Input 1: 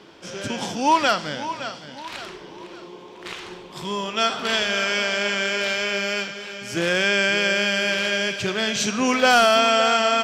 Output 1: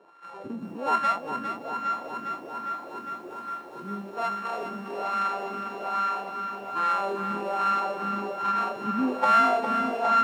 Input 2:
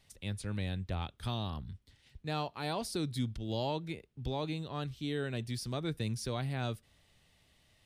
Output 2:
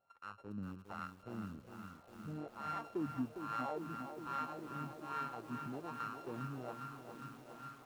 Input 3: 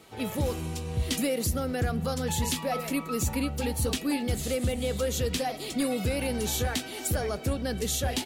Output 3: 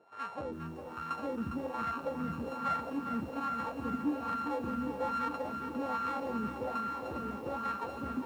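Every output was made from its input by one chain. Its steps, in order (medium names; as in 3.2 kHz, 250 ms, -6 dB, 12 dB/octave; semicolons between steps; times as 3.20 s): sorted samples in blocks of 32 samples; echo that smears into a reverb 1013 ms, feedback 47%, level -13 dB; wah-wah 1.2 Hz 220–1300 Hz, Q 2.5; bit-crushed delay 406 ms, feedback 80%, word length 10-bit, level -8 dB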